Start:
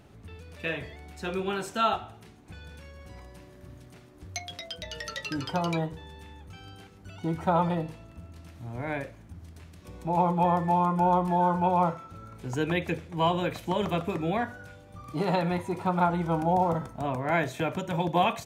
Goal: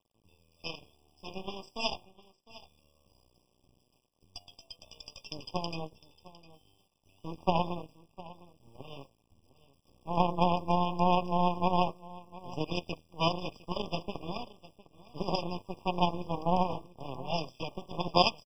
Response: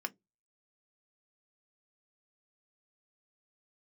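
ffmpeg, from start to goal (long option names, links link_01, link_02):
-filter_complex "[0:a]acrossover=split=270|1200|1700[link_01][link_02][link_03][link_04];[link_03]acompressor=threshold=-53dB:ratio=6[link_05];[link_01][link_02][link_05][link_04]amix=inputs=4:normalize=0,aeval=exprs='0.237*(cos(1*acos(clip(val(0)/0.237,-1,1)))-cos(1*PI/2))+0.075*(cos(3*acos(clip(val(0)/0.237,-1,1)))-cos(3*PI/2))+0.00168*(cos(5*acos(clip(val(0)/0.237,-1,1)))-cos(5*PI/2))+0.0106*(cos(6*acos(clip(val(0)/0.237,-1,1)))-cos(6*PI/2))+0.0015*(cos(7*acos(clip(val(0)/0.237,-1,1)))-cos(7*PI/2))':channel_layout=same,lowpass=frequency=4700:width_type=q:width=7.8,acrusher=bits=11:mix=0:aa=0.000001,aecho=1:1:706:0.112,afftfilt=real='re*eq(mod(floor(b*sr/1024/1200),2),0)':imag='im*eq(mod(floor(b*sr/1024/1200),2),0)':win_size=1024:overlap=0.75,volume=5dB"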